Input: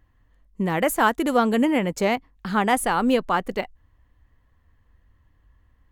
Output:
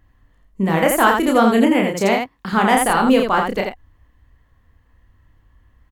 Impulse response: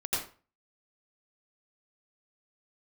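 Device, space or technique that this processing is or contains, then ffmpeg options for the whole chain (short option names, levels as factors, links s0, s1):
slapback doubling: -filter_complex "[0:a]asplit=3[s0][s1][s2];[s1]adelay=31,volume=0.631[s3];[s2]adelay=84,volume=0.596[s4];[s0][s3][s4]amix=inputs=3:normalize=0,asettb=1/sr,asplit=3[s5][s6][s7];[s5]atrim=end=1.744[s8];[s6]atrim=start=1.74:end=2.53,asetpts=PTS-STARTPTS,afade=t=in:d=0.004:c=qsin,afade=t=out:st=0.786:d=0.004:c=qsin,highpass=f=130:p=1[s9];[s7]atrim=start=2.526[s10];[s8][s9]acrossfade=d=0.004:c1=hsin:c2=qsin[s11];[s11][s10]acrossfade=d=0.004:c1=qsin:c2=hsin,volume=1.5"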